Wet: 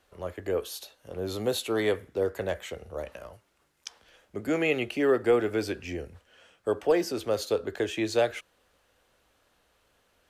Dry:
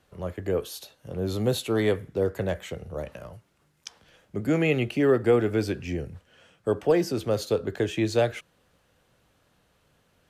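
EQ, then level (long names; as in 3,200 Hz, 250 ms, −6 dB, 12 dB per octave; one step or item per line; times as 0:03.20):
parametric band 140 Hz −13.5 dB 1.4 octaves
0.0 dB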